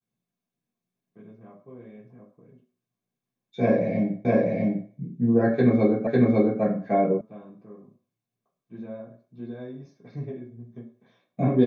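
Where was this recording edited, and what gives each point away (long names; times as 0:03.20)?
0:04.25: the same again, the last 0.65 s
0:06.07: the same again, the last 0.55 s
0:07.21: cut off before it has died away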